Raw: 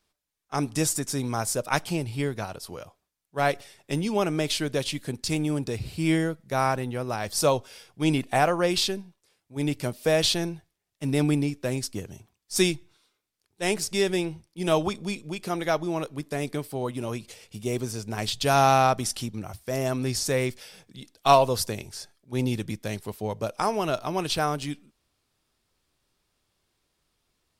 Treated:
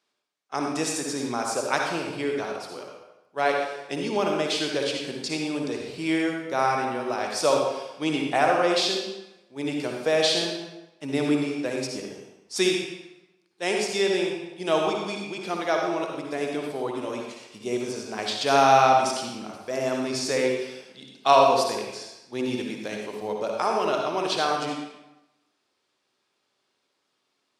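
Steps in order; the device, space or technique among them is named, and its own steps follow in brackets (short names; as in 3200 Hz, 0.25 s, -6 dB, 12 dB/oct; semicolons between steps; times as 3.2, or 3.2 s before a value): supermarket ceiling speaker (BPF 300–6500 Hz; reverb RT60 0.95 s, pre-delay 52 ms, DRR 0.5 dB)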